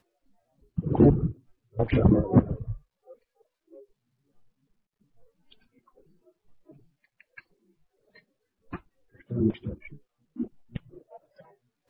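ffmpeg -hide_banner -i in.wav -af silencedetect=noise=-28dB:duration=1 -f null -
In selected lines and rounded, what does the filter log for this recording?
silence_start: 2.73
silence_end: 8.73 | silence_duration: 6.00
silence_start: 10.77
silence_end: 11.90 | silence_duration: 1.13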